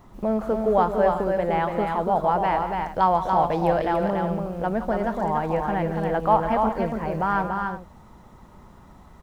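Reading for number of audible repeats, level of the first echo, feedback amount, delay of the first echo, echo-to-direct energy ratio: 3, -13.5 dB, no regular repeats, 166 ms, -3.5 dB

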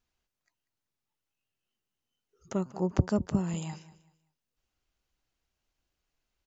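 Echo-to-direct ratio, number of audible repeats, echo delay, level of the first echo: -17.0 dB, 2, 191 ms, -17.5 dB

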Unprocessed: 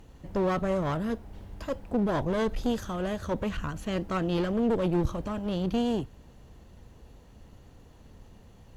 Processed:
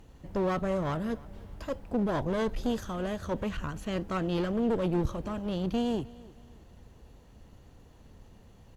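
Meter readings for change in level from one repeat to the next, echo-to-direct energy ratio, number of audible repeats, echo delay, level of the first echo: -8.0 dB, -21.5 dB, 2, 308 ms, -22.0 dB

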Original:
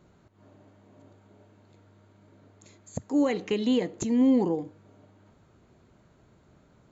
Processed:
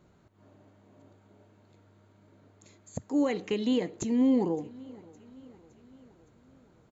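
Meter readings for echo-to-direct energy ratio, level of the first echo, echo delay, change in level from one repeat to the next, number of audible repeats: -21.5 dB, -23.0 dB, 564 ms, -5.0 dB, 3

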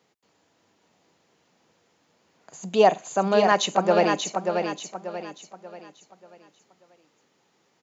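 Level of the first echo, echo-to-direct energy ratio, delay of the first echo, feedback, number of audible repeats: -5.5 dB, -5.0 dB, 586 ms, 38%, 4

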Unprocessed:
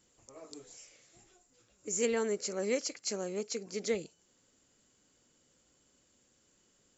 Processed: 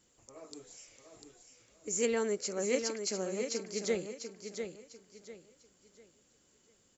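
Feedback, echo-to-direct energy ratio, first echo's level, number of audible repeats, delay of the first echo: 30%, -6.5 dB, -7.0 dB, 3, 697 ms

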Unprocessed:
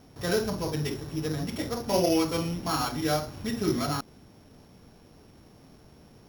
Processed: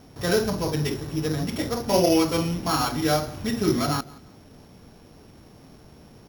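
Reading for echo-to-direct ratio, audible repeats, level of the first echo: -21.5 dB, 2, -22.0 dB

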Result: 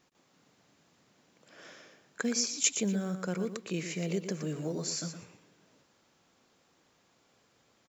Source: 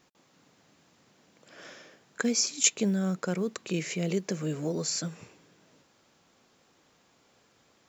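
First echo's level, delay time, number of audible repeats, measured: -9.0 dB, 118 ms, 2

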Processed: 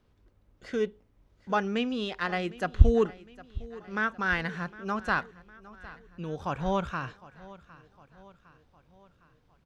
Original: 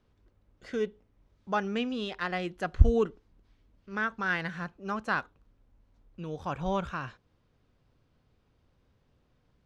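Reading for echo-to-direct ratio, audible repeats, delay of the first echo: -18.0 dB, 3, 758 ms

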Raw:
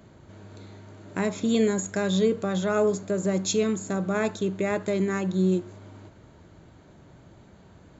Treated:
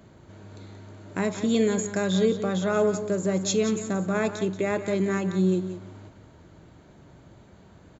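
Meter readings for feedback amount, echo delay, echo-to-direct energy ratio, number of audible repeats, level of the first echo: 16%, 179 ms, -11.0 dB, 2, -11.0 dB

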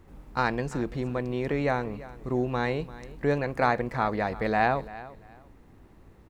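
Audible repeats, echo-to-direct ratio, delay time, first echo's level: 2, -17.5 dB, 342 ms, -17.5 dB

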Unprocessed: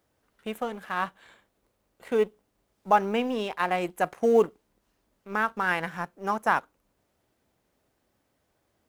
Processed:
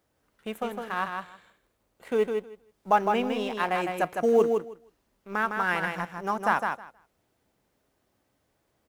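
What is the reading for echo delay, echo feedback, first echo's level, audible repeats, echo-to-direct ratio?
158 ms, 15%, -5.0 dB, 2, -5.0 dB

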